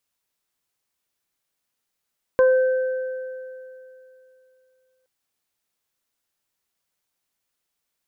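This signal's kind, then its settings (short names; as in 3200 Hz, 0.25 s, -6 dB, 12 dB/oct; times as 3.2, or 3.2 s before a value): additive tone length 2.67 s, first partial 516 Hz, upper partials -11.5/-14 dB, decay 2.85 s, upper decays 0.28/2.81 s, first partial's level -11.5 dB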